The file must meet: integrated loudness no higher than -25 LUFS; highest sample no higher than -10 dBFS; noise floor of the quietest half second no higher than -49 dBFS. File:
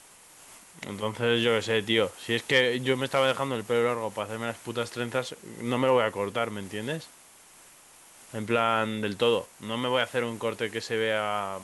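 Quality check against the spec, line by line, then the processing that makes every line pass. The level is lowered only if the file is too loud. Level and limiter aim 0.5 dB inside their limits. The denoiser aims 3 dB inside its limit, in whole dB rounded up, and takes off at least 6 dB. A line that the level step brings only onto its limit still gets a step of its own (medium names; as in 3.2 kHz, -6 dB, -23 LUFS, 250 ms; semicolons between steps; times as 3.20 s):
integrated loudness -27.5 LUFS: pass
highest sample -9.0 dBFS: fail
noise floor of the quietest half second -54 dBFS: pass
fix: peak limiter -10.5 dBFS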